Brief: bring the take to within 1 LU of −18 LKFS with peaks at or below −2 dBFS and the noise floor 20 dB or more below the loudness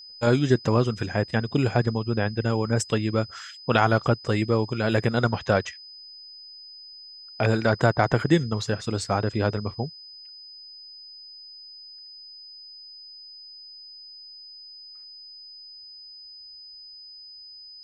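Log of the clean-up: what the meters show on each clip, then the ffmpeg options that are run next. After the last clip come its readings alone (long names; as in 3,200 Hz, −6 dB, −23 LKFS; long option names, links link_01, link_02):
interfering tone 5,000 Hz; level of the tone −42 dBFS; integrated loudness −24.5 LKFS; sample peak −4.0 dBFS; target loudness −18.0 LKFS
→ -af "bandreject=frequency=5000:width=30"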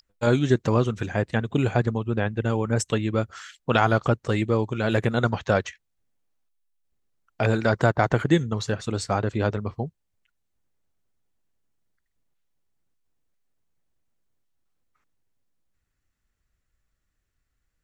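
interfering tone none found; integrated loudness −24.5 LKFS; sample peak −4.0 dBFS; target loudness −18.0 LKFS
→ -af "volume=6.5dB,alimiter=limit=-2dB:level=0:latency=1"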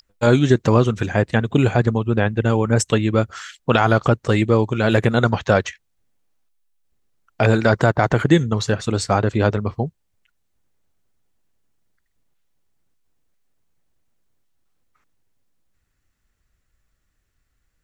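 integrated loudness −18.5 LKFS; sample peak −2.0 dBFS; background noise floor −70 dBFS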